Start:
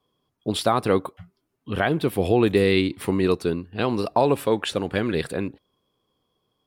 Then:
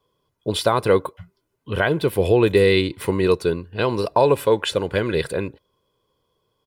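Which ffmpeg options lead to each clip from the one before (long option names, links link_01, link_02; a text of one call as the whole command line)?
ffmpeg -i in.wav -af "aecho=1:1:2:0.48,volume=2dB" out.wav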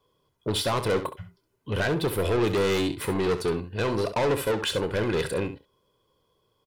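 ffmpeg -i in.wav -filter_complex "[0:a]asoftclip=type=tanh:threshold=-21.5dB,asplit=2[link_01][link_02];[link_02]aecho=0:1:28|67:0.178|0.282[link_03];[link_01][link_03]amix=inputs=2:normalize=0" out.wav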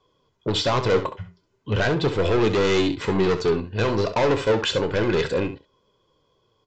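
ffmpeg -i in.wav -af "aresample=16000,aresample=44100,flanger=delay=2.6:depth=8.8:regen=75:speed=0.36:shape=triangular,volume=8.5dB" out.wav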